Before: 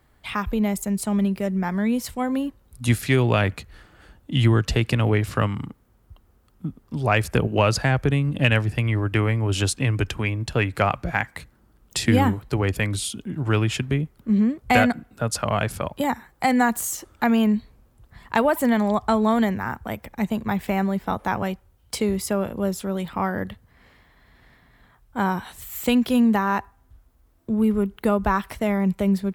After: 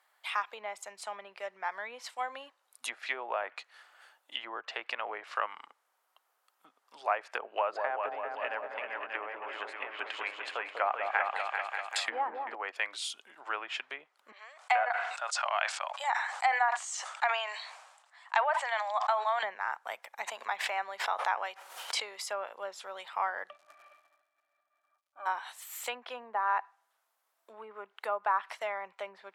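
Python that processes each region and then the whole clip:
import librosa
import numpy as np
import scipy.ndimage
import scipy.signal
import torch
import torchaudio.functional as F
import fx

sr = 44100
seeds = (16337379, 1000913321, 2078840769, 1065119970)

y = fx.chain(x, sr, fx.peak_eq(hz=5700.0, db=-9.5, octaves=0.21),
    fx.echo_opening(ms=195, hz=750, octaves=2, feedback_pct=70, wet_db=-3), at=(7.47, 12.55))
y = fx.chain(y, sr, fx.ellip_bandpass(low_hz=670.0, high_hz=8200.0, order=3, stop_db=60),
    fx.sustainer(db_per_s=51.0), at=(14.32, 19.43))
y = fx.chain(y, sr, fx.low_shelf(hz=190.0, db=-10.5),
    fx.pre_swell(db_per_s=44.0), at=(20.22, 22.29))
y = fx.octave_resonator(y, sr, note='D', decay_s=0.1, at=(23.48, 25.25), fade=0.02)
y = fx.dmg_crackle(y, sr, seeds[0], per_s=180.0, level_db=-70.0, at=(23.48, 25.25), fade=0.02)
y = fx.sustainer(y, sr, db_per_s=41.0, at=(23.48, 25.25), fade=0.02)
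y = fx.env_lowpass_down(y, sr, base_hz=1000.0, full_db=-14.5)
y = scipy.signal.sosfilt(scipy.signal.butter(4, 700.0, 'highpass', fs=sr, output='sos'), y)
y = y * 10.0 ** (-4.0 / 20.0)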